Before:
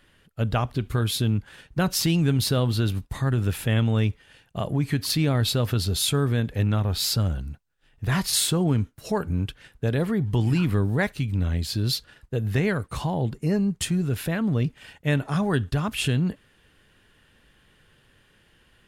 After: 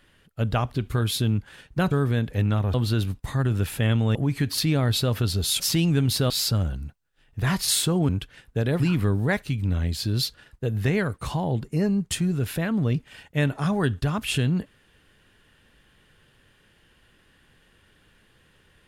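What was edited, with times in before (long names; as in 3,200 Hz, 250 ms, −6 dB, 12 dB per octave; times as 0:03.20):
0:01.91–0:02.61: swap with 0:06.12–0:06.95
0:04.02–0:04.67: remove
0:08.74–0:09.36: remove
0:10.07–0:10.50: remove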